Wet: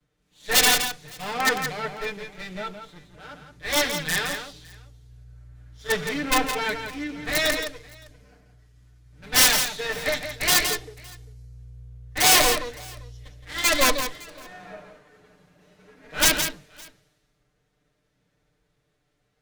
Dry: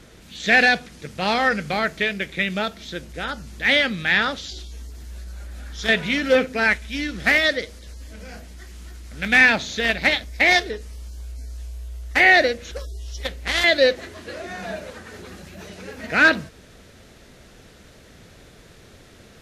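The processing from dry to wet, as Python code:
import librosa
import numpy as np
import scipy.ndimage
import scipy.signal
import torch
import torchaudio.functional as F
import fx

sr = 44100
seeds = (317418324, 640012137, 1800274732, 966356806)

y = fx.lower_of_two(x, sr, delay_ms=6.7)
y = fx.hpss(y, sr, part='percussive', gain_db=-10)
y = (np.mod(10.0 ** (13.5 / 20.0) * y + 1.0, 2.0) - 1.0) / 10.0 ** (13.5 / 20.0)
y = fx.echo_multitap(y, sr, ms=(169, 565), db=(-5.5, -16.0))
y = fx.band_widen(y, sr, depth_pct=70)
y = y * 10.0 ** (-2.0 / 20.0)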